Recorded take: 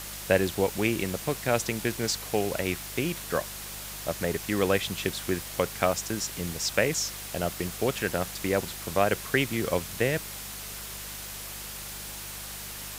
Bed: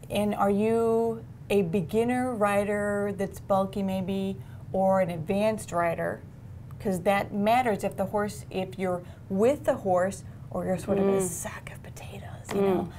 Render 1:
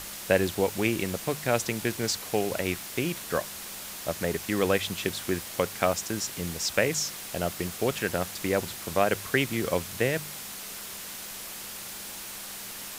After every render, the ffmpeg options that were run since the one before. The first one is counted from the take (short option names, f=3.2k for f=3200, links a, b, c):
-af "bandreject=f=50:t=h:w=4,bandreject=f=100:t=h:w=4,bandreject=f=150:t=h:w=4"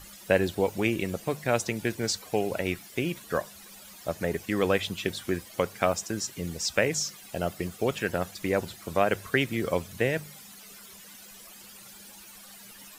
-af "afftdn=nr=14:nf=-40"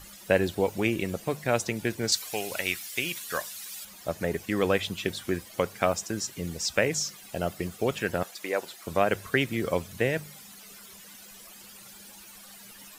-filter_complex "[0:a]asettb=1/sr,asplit=3[a][b][c];[a]atrim=end=2.124[d];[b]atrim=start=2.12:end=3.85,asetpts=PTS-STARTPTS,afade=t=in:d=0.004:c=qsin,afade=t=out:st=1.726:d=0.004:c=qsin,tiltshelf=f=1.2k:g=-9.5[e];[c]atrim=start=3.846[f];[d][e]acrossfade=d=0.004:c1=hsin:c2=qsin[g];[g][f]acrossfade=d=0.004:c1=qsin:c2=hsin,asettb=1/sr,asplit=3[h][i][j];[h]atrim=end=8.234[k];[i]atrim=start=8.23:end=8.87,asetpts=PTS-STARTPTS,afade=t=in:d=0.004:c=qsin,afade=t=out:st=0.636:d=0.004:c=qsin,highpass=440[l];[j]atrim=start=8.866[m];[k][l]acrossfade=d=0.004:c1=hsin:c2=qsin[n];[n][m]acrossfade=d=0.004:c1=qsin:c2=hsin"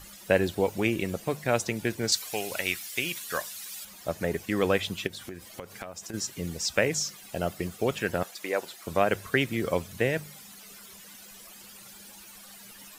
-filter_complex "[0:a]asplit=3[a][b][c];[a]afade=t=out:st=5.06:d=0.02[d];[b]acompressor=threshold=-35dB:ratio=10:attack=3.2:release=140:knee=1:detection=peak,afade=t=in:st=5.06:d=0.02,afade=t=out:st=6.13:d=0.02[e];[c]afade=t=in:st=6.13:d=0.02[f];[d][e][f]amix=inputs=3:normalize=0"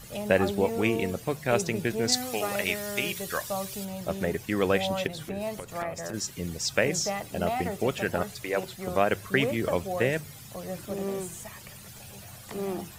-filter_complex "[1:a]volume=-8dB[a];[0:a][a]amix=inputs=2:normalize=0"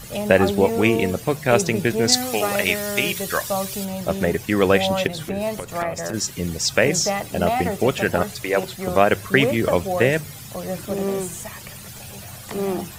-af "volume=8dB,alimiter=limit=-1dB:level=0:latency=1"